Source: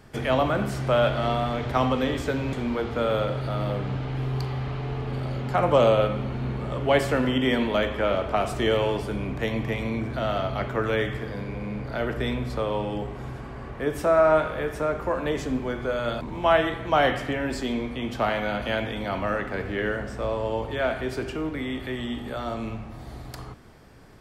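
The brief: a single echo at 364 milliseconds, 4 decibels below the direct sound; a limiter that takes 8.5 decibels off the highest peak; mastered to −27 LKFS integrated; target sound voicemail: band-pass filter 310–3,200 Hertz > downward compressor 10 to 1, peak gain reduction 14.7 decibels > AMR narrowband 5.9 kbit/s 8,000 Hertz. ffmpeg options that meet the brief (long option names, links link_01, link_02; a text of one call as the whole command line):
ffmpeg -i in.wav -af "alimiter=limit=-16.5dB:level=0:latency=1,highpass=310,lowpass=3200,aecho=1:1:364:0.631,acompressor=threshold=-35dB:ratio=10,volume=14dB" -ar 8000 -c:a libopencore_amrnb -b:a 5900 out.amr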